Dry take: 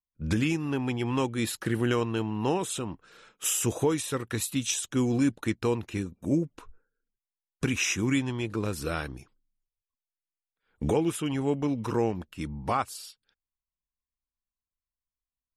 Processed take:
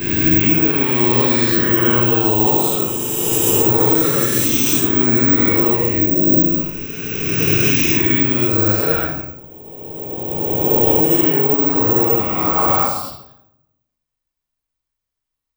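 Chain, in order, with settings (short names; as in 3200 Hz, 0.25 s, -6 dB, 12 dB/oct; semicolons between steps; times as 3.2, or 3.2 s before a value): spectral swells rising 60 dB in 2.87 s; 0.46–2.27 resonant high shelf 7400 Hz -10 dB, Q 1.5; reverb RT60 0.85 s, pre-delay 7 ms, DRR -9.5 dB; careless resampling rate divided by 2×, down none, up zero stuff; maximiser -3 dB; gain -1 dB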